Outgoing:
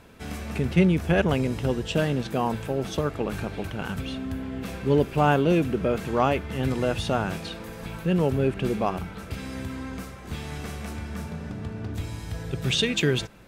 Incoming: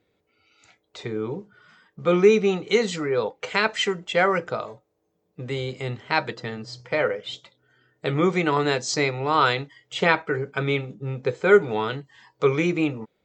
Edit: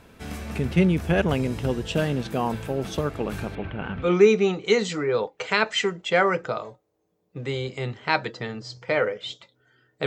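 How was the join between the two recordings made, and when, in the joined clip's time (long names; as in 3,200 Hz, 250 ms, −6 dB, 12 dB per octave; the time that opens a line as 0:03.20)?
outgoing
0:03.55–0:04.13: low-pass filter 3,000 Hz 24 dB per octave
0:04.04: continue with incoming from 0:02.07, crossfade 0.18 s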